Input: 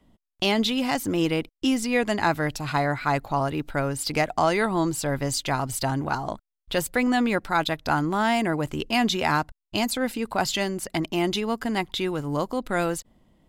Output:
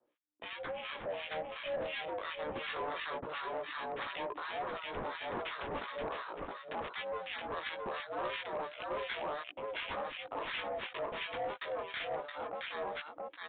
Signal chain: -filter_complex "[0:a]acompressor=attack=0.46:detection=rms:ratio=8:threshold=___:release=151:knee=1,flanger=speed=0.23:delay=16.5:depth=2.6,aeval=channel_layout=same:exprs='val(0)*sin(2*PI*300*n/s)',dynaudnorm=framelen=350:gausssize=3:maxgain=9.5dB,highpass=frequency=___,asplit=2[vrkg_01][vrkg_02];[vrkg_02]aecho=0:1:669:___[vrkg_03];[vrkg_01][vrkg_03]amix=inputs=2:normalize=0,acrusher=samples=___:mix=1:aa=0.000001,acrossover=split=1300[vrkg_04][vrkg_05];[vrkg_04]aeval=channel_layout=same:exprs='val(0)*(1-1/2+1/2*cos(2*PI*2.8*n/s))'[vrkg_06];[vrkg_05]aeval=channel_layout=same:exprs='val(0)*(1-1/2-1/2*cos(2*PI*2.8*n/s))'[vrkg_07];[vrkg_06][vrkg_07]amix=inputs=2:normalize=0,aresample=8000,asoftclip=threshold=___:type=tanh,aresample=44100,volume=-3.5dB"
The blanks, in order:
-23dB, 460, 0.668, 8, -27.5dB